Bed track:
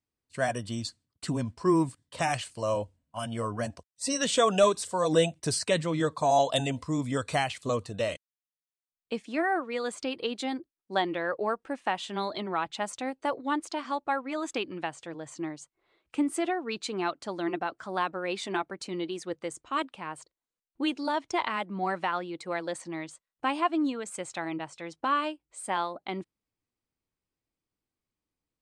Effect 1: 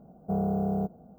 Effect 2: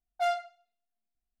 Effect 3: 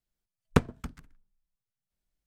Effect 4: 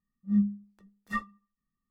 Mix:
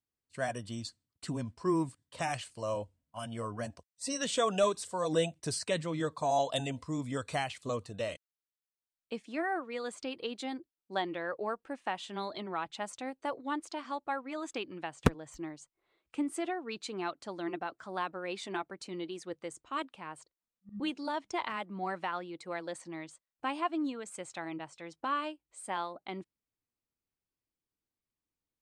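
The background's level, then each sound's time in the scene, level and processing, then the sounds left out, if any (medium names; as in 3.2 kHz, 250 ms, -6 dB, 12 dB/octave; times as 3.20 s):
bed track -6 dB
14.50 s: add 3 -1 dB + expander on every frequency bin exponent 3
20.38 s: add 4 -17 dB + tremolo saw up 9.6 Hz, depth 95%
not used: 1, 2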